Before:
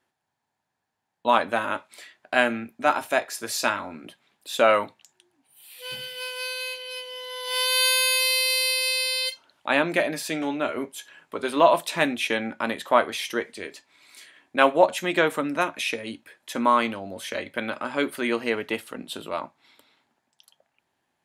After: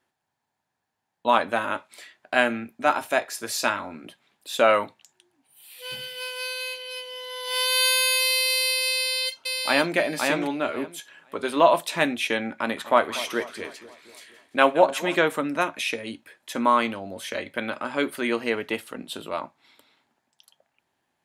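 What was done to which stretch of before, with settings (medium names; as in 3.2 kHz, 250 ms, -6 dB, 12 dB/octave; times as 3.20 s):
8.93–9.95 s: echo throw 520 ms, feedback 15%, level -3 dB
12.41–15.16 s: two-band feedback delay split 1.1 kHz, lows 240 ms, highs 171 ms, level -15 dB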